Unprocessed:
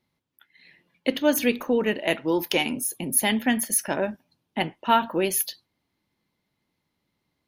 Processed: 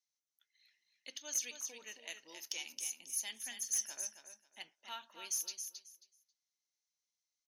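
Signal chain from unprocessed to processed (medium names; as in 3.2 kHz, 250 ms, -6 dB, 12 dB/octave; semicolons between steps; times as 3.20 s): band-pass filter 6.1 kHz, Q 7.3; on a send: feedback delay 270 ms, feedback 19%, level -8 dB; on the sum: saturation -30 dBFS, distortion -17 dB; trim +5 dB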